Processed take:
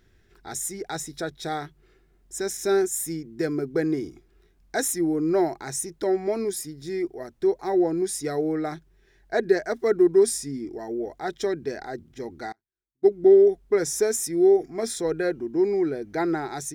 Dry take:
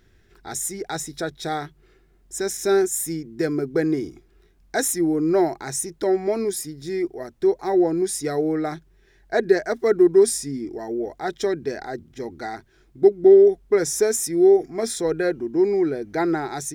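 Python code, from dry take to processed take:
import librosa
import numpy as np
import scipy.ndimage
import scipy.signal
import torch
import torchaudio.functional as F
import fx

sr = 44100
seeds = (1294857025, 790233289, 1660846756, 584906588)

y = fx.upward_expand(x, sr, threshold_db=-33.0, expansion=2.5, at=(12.52, 13.08))
y = F.gain(torch.from_numpy(y), -3.0).numpy()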